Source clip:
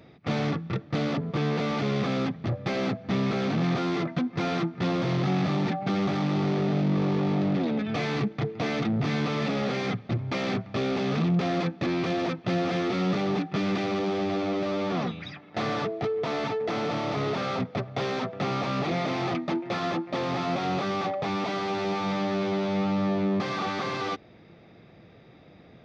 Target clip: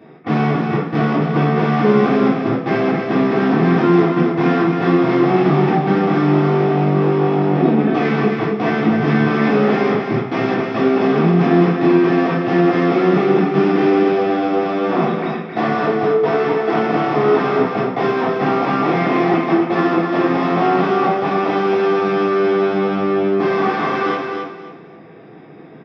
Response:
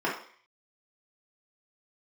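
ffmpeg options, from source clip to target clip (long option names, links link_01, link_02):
-filter_complex "[0:a]aecho=1:1:268|536|804:0.562|0.146|0.038[link_01];[1:a]atrim=start_sample=2205[link_02];[link_01][link_02]afir=irnorm=-1:irlink=0,volume=-1dB"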